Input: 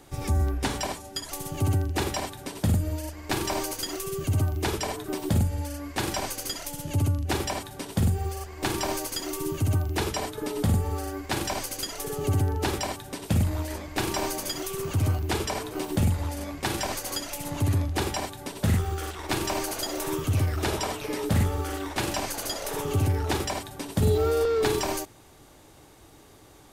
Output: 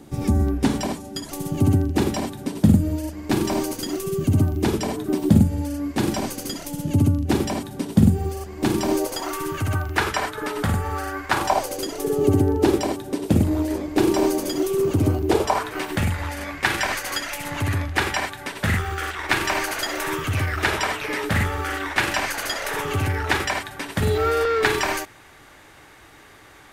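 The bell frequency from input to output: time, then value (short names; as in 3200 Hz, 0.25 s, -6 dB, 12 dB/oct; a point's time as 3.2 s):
bell +14.5 dB 1.6 oct
8.86 s 220 Hz
9.36 s 1500 Hz
11.26 s 1500 Hz
11.91 s 330 Hz
15.25 s 330 Hz
15.7 s 1800 Hz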